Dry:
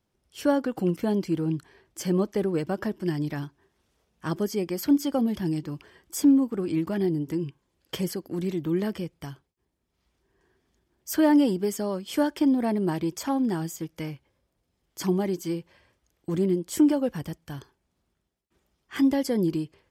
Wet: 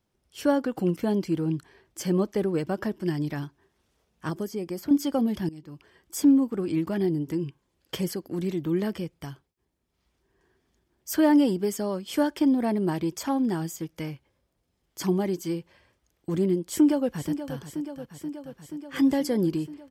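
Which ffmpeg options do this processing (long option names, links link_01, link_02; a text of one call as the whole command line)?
ffmpeg -i in.wav -filter_complex "[0:a]asettb=1/sr,asplit=3[link_01][link_02][link_03];[link_01]atrim=end=4.294[link_04];[link_02]atrim=start=4.29:end=4.91,asetpts=PTS-STARTPTS,afade=type=in:duration=0.004:curve=qsin,afade=type=out:start_time=0.616:duration=0.004:curve=qsin,acrossover=split=1300|5400[link_05][link_06][link_07];[link_05]acompressor=threshold=-28dB:ratio=4[link_08];[link_06]acompressor=threshold=-52dB:ratio=4[link_09];[link_07]acompressor=threshold=-48dB:ratio=4[link_10];[link_08][link_09][link_10]amix=inputs=3:normalize=0[link_11];[link_03]atrim=start=4.906[link_12];[link_04][link_11]acrossfade=duration=0.004:curve1=hsin:curve2=qsin[link_13];[link_13][link_12]acrossfade=duration=0.004:curve1=qsin:curve2=hsin,asplit=2[link_14][link_15];[link_15]afade=type=in:start_time=16.69:duration=0.01,afade=type=out:start_time=17.57:duration=0.01,aecho=0:1:480|960|1440|1920|2400|2880|3360|3840|4320|4800|5280|5760:0.298538|0.223904|0.167928|0.125946|0.0944594|0.0708445|0.0531334|0.03985|0.0298875|0.0224157|0.0168117|0.0126088[link_16];[link_14][link_16]amix=inputs=2:normalize=0,asplit=2[link_17][link_18];[link_17]atrim=end=5.49,asetpts=PTS-STARTPTS,afade=type=out:start_time=5.486:duration=0.004:curve=hsin:silence=0.11885[link_19];[link_18]atrim=start=5.49,asetpts=PTS-STARTPTS,afade=type=in:duration=0.78:silence=0.11885[link_20];[link_19][link_20]concat=n=2:v=0:a=1" out.wav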